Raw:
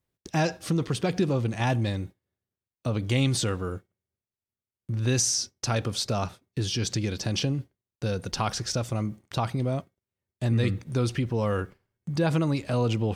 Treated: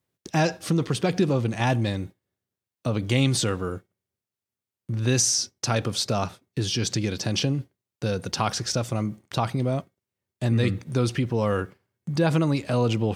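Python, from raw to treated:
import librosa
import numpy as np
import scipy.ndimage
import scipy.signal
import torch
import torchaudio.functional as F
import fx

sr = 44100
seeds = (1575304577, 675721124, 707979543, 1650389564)

y = scipy.signal.sosfilt(scipy.signal.butter(2, 96.0, 'highpass', fs=sr, output='sos'), x)
y = y * librosa.db_to_amplitude(3.0)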